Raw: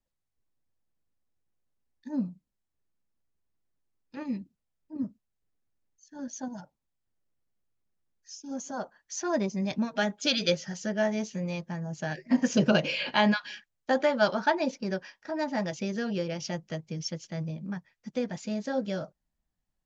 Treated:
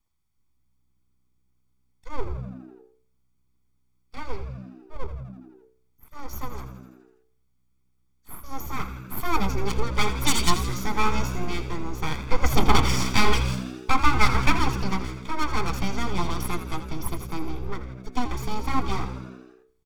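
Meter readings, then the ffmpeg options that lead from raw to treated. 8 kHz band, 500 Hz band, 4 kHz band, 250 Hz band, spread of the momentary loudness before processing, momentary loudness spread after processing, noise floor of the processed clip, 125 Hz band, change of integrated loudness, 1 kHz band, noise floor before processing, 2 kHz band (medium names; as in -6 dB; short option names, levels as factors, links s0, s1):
no reading, -3.5 dB, +3.5 dB, -1.0 dB, 15 LU, 19 LU, -67 dBFS, +8.0 dB, +3.0 dB, +7.5 dB, -83 dBFS, +3.5 dB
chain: -filter_complex "[0:a]bandreject=f=93.12:t=h:w=4,bandreject=f=186.24:t=h:w=4,bandreject=f=279.36:t=h:w=4,bandreject=f=372.48:t=h:w=4,bandreject=f=465.6:t=h:w=4,bandreject=f=558.72:t=h:w=4,bandreject=f=651.84:t=h:w=4,bandreject=f=744.96:t=h:w=4,bandreject=f=838.08:t=h:w=4,bandreject=f=931.2:t=h:w=4,bandreject=f=1024.32:t=h:w=4,bandreject=f=1117.44:t=h:w=4,bandreject=f=1210.56:t=h:w=4,bandreject=f=1303.68:t=h:w=4,bandreject=f=1396.8:t=h:w=4,bandreject=f=1489.92:t=h:w=4,bandreject=f=1583.04:t=h:w=4,bandreject=f=1676.16:t=h:w=4,bandreject=f=1769.28:t=h:w=4,bandreject=f=1862.4:t=h:w=4,bandreject=f=1955.52:t=h:w=4,bandreject=f=2048.64:t=h:w=4,bandreject=f=2141.76:t=h:w=4,bandreject=f=2234.88:t=h:w=4,bandreject=f=2328:t=h:w=4,bandreject=f=2421.12:t=h:w=4,bandreject=f=2514.24:t=h:w=4,bandreject=f=2607.36:t=h:w=4,bandreject=f=2700.48:t=h:w=4,bandreject=f=2793.6:t=h:w=4,bandreject=f=2886.72:t=h:w=4,bandreject=f=2979.84:t=h:w=4,bandreject=f=3072.96:t=h:w=4,bandreject=f=3166.08:t=h:w=4,bandreject=f=3259.2:t=h:w=4,aeval=exprs='abs(val(0))':c=same,aecho=1:1:0.9:0.67,asplit=8[s0][s1][s2][s3][s4][s5][s6][s7];[s1]adelay=83,afreqshift=63,volume=0.251[s8];[s2]adelay=166,afreqshift=126,volume=0.158[s9];[s3]adelay=249,afreqshift=189,volume=0.1[s10];[s4]adelay=332,afreqshift=252,volume=0.0631[s11];[s5]adelay=415,afreqshift=315,volume=0.0394[s12];[s6]adelay=498,afreqshift=378,volume=0.0248[s13];[s7]adelay=581,afreqshift=441,volume=0.0157[s14];[s0][s8][s9][s10][s11][s12][s13][s14]amix=inputs=8:normalize=0,volume=1.88"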